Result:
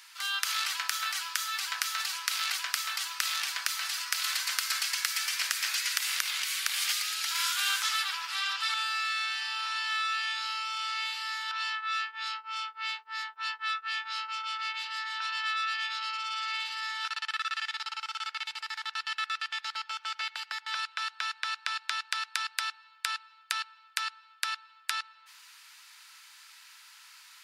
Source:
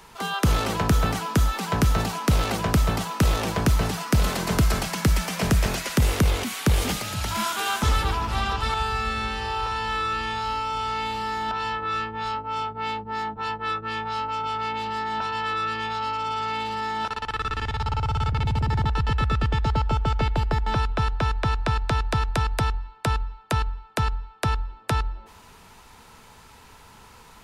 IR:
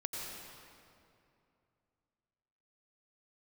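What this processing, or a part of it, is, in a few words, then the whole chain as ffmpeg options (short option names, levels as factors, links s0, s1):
headphones lying on a table: -af "highpass=f=1500:w=0.5412,highpass=f=1500:w=1.3066,equalizer=f=4700:t=o:w=0.5:g=4.5"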